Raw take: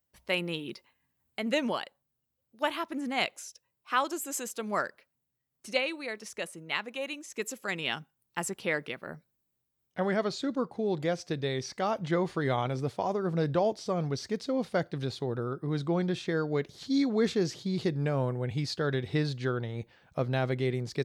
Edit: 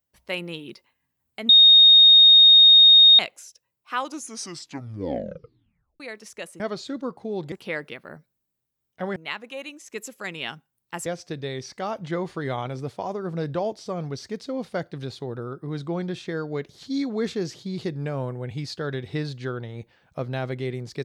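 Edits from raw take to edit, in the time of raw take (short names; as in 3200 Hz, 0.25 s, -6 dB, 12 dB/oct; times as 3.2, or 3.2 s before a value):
1.49–3.19 bleep 3710 Hz -8.5 dBFS
3.94 tape stop 2.06 s
6.6–8.5 swap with 10.14–11.06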